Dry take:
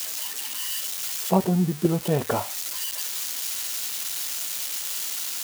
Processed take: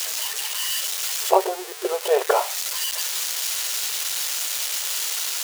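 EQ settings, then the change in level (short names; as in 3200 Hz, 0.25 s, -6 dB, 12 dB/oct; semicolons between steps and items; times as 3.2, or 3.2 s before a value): brick-wall FIR high-pass 370 Hz; high shelf 10000 Hz -6.5 dB; +7.0 dB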